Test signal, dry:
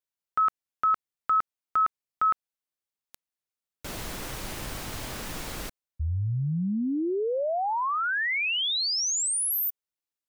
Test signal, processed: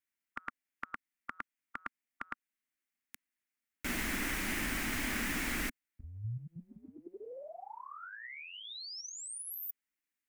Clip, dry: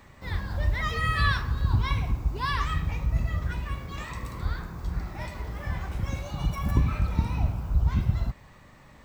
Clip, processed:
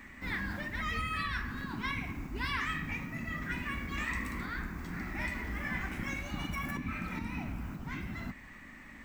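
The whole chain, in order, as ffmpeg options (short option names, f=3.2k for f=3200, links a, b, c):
-af "equalizer=f=125:t=o:w=1:g=-12,equalizer=f=250:t=o:w=1:g=11,equalizer=f=500:t=o:w=1:g=-9,equalizer=f=1k:t=o:w=1:g=-4,equalizer=f=2k:t=o:w=1:g=11,equalizer=f=4k:t=o:w=1:g=-6,alimiter=limit=-20dB:level=0:latency=1:release=433,afftfilt=real='re*lt(hypot(re,im),0.2)':imag='im*lt(hypot(re,im),0.2)':win_size=1024:overlap=0.75"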